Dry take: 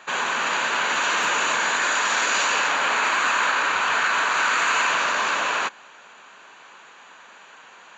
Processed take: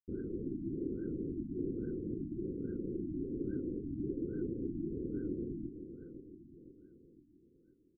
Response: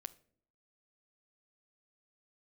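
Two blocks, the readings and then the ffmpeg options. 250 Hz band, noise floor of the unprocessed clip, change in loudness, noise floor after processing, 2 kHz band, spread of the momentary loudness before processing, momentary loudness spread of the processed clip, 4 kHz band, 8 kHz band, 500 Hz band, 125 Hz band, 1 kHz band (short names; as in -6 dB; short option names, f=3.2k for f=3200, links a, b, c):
+5.5 dB, -48 dBFS, -19.0 dB, -67 dBFS, under -40 dB, 3 LU, 13 LU, under -40 dB, under -40 dB, -8.5 dB, n/a, under -40 dB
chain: -filter_complex "[0:a]aderivative,aeval=exprs='val(0)*sin(2*PI*1900*n/s)':c=same,asplit=2[a][b];[b]adynamicsmooth=sensitivity=5.5:basefreq=1.7k,volume=3dB[c];[a][c]amix=inputs=2:normalize=0,aeval=exprs='0.224*sin(PI/2*3.55*val(0)/0.224)':c=same,asplit=3[d][e][f];[d]bandpass=f=530:t=q:w=8,volume=0dB[g];[e]bandpass=f=1.84k:t=q:w=8,volume=-6dB[h];[f]bandpass=f=2.48k:t=q:w=8,volume=-9dB[i];[g][h][i]amix=inputs=3:normalize=0,acrossover=split=2700[j][k];[j]asoftclip=type=tanh:threshold=-27dB[l];[l][k]amix=inputs=2:normalize=0,acrusher=bits=5:mix=0:aa=0.000001,asuperstop=centerf=840:order=12:qfactor=0.51,aecho=1:1:511|1022|1533|2044|2555|3066:0.299|0.155|0.0807|0.042|0.0218|0.0114,afftfilt=real='re*lt(b*sr/1024,340*pow(1600/340,0.5+0.5*sin(2*PI*1.2*pts/sr)))':imag='im*lt(b*sr/1024,340*pow(1600/340,0.5+0.5*sin(2*PI*1.2*pts/sr)))':win_size=1024:overlap=0.75,volume=8.5dB"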